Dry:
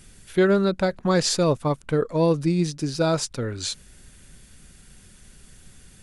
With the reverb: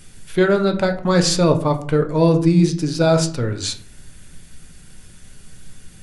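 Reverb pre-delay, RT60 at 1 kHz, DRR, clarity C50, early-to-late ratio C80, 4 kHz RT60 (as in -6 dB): 7 ms, 0.45 s, 5.0 dB, 11.5 dB, 16.5 dB, 0.25 s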